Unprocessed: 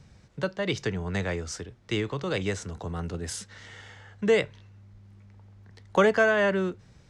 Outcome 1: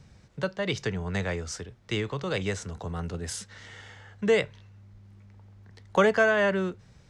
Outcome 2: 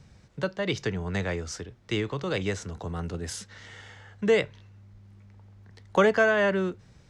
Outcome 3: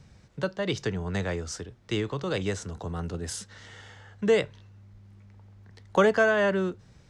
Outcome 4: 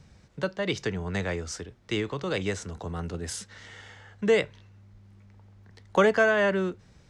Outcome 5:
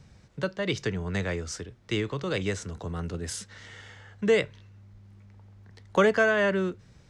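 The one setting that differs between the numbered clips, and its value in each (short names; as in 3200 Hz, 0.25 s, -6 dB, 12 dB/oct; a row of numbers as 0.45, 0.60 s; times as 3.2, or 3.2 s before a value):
dynamic EQ, frequency: 310, 8700, 2200, 120, 800 Hz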